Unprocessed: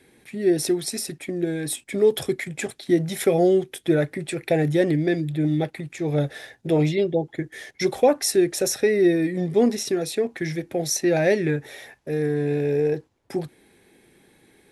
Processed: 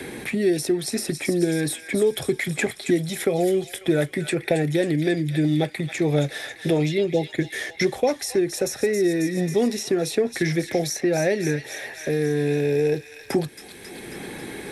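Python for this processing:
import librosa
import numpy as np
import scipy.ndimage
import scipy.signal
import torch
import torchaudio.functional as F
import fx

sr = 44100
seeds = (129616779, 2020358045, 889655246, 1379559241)

y = fx.rider(x, sr, range_db=4, speed_s=0.5)
y = fx.echo_wet_highpass(y, sr, ms=271, feedback_pct=54, hz=1600.0, wet_db=-9.5)
y = fx.band_squash(y, sr, depth_pct=70)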